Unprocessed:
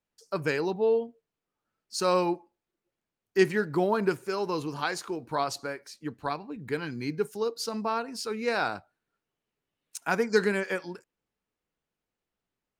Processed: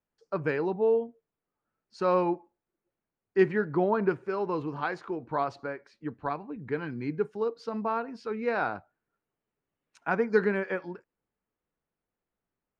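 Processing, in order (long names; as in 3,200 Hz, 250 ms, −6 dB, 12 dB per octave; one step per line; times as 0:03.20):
low-pass filter 1,900 Hz 12 dB per octave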